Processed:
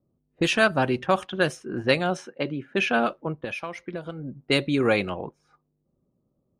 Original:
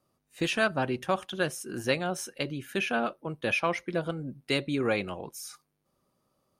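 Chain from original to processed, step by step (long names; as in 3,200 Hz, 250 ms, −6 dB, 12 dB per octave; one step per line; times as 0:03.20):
0:02.17–0:02.81: high-pass filter 150 Hz
low-pass that shuts in the quiet parts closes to 350 Hz, open at −24 dBFS
0:03.32–0:04.37: downward compressor 8 to 1, threshold −36 dBFS, peak gain reduction 13.5 dB
level +6 dB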